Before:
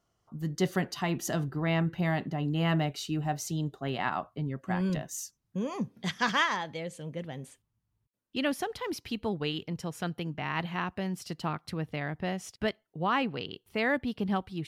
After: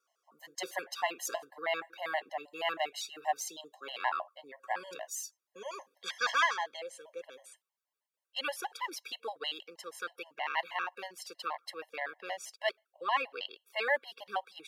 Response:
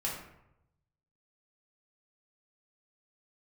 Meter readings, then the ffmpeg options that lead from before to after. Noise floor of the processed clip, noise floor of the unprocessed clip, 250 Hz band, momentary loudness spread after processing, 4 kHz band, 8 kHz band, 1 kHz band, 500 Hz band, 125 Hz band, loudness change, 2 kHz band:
under -85 dBFS, -80 dBFS, -24.0 dB, 13 LU, -1.0 dB, -1.0 dB, -1.0 dB, -4.5 dB, under -40 dB, -4.0 dB, -1.0 dB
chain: -af "highpass=f=540:w=0.5412,highpass=f=540:w=1.3066,afftfilt=real='re*gt(sin(2*PI*6.3*pts/sr)*(1-2*mod(floor(b*sr/1024/550),2)),0)':imag='im*gt(sin(2*PI*6.3*pts/sr)*(1-2*mod(floor(b*sr/1024/550),2)),0)':win_size=1024:overlap=0.75,volume=1.33"

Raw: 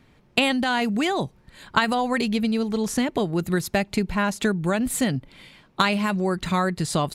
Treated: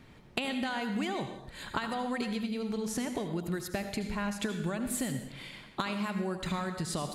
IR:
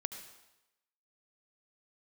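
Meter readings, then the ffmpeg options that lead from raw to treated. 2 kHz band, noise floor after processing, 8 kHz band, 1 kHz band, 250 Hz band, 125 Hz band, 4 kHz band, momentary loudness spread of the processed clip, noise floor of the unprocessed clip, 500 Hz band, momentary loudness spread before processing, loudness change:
-11.5 dB, -55 dBFS, -7.5 dB, -11.5 dB, -10.0 dB, -9.5 dB, -11.0 dB, 5 LU, -58 dBFS, -11.0 dB, 4 LU, -11.0 dB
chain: -filter_complex "[0:a]acompressor=threshold=0.02:ratio=5[s0];[1:a]atrim=start_sample=2205,afade=t=out:st=0.37:d=0.01,atrim=end_sample=16758[s1];[s0][s1]afir=irnorm=-1:irlink=0,volume=1.33"

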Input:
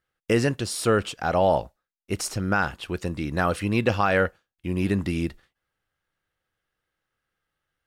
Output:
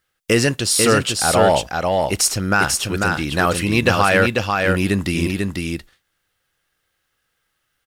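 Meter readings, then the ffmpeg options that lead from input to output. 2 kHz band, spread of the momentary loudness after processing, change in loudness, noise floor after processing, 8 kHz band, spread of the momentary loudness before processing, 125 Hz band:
+9.5 dB, 7 LU, +7.5 dB, -73 dBFS, +15.5 dB, 9 LU, +6.0 dB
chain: -filter_complex "[0:a]highshelf=f=2300:g=10,asplit=2[s0][s1];[s1]volume=4.73,asoftclip=hard,volume=0.211,volume=0.668[s2];[s0][s2]amix=inputs=2:normalize=0,aecho=1:1:494:0.668"

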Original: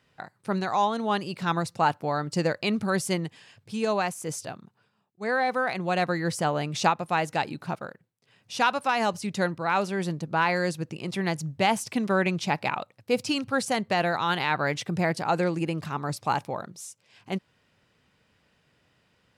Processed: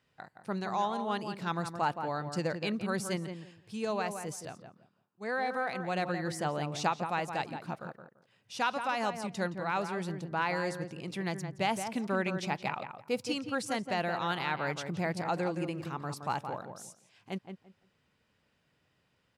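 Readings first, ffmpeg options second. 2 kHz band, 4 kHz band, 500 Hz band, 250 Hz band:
-7.0 dB, -7.5 dB, -6.5 dB, -6.5 dB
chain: -filter_complex "[0:a]asplit=2[s0][s1];[s1]adelay=170,lowpass=f=1800:p=1,volume=0.447,asplit=2[s2][s3];[s3]adelay=170,lowpass=f=1800:p=1,volume=0.21,asplit=2[s4][s5];[s5]adelay=170,lowpass=f=1800:p=1,volume=0.21[s6];[s0][s2][s4][s6]amix=inputs=4:normalize=0,volume=0.422"

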